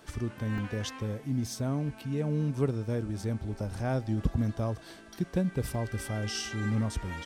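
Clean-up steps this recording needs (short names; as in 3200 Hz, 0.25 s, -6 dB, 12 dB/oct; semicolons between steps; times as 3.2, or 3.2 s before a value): de-hum 434.8 Hz, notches 24; interpolate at 0.58/3.2/5.75, 1.8 ms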